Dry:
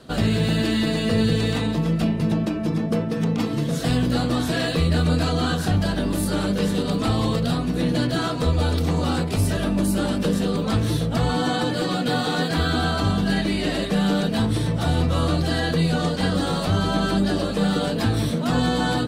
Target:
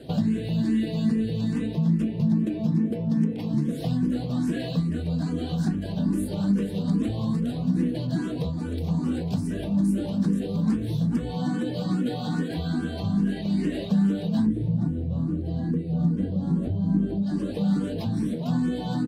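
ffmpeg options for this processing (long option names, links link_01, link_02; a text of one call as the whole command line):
ffmpeg -i in.wav -filter_complex "[0:a]asplit=3[link_01][link_02][link_03];[link_01]afade=type=out:start_time=14.46:duration=0.02[link_04];[link_02]tiltshelf=frequency=770:gain=9,afade=type=in:start_time=14.46:duration=0.02,afade=type=out:start_time=17.21:duration=0.02[link_05];[link_03]afade=type=in:start_time=17.21:duration=0.02[link_06];[link_04][link_05][link_06]amix=inputs=3:normalize=0,aecho=1:1:1120:0.133,acompressor=threshold=-30dB:ratio=10,equalizer=frequency=200:width=0.73:gain=14,bandreject=frequency=1300:width=6.5,asplit=2[link_07][link_08];[link_08]afreqshift=2.4[link_09];[link_07][link_09]amix=inputs=2:normalize=1" out.wav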